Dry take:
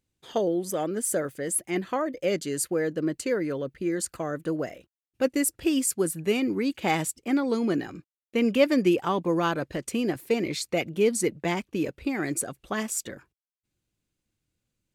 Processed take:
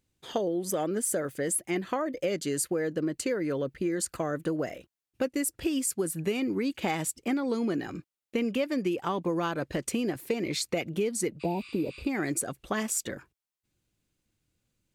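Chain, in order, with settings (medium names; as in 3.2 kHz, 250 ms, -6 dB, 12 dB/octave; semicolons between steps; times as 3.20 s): spectral replace 11.43–12.00 s, 1–11 kHz after; compression 6:1, threshold -29 dBFS, peak gain reduction 14 dB; trim +3 dB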